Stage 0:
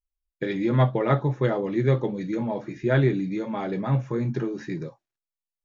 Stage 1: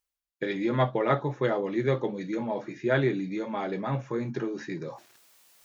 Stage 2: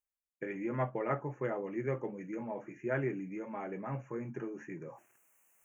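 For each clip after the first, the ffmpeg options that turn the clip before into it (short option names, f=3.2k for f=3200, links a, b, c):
-af "highpass=f=330:p=1,areverse,acompressor=mode=upward:threshold=-32dB:ratio=2.5,areverse"
-af "asuperstop=centerf=4200:order=8:qfactor=1.2,volume=-9dB"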